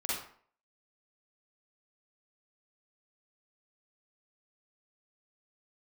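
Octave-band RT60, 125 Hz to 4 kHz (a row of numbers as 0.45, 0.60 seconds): 0.45, 0.50, 0.50, 0.55, 0.45, 0.35 seconds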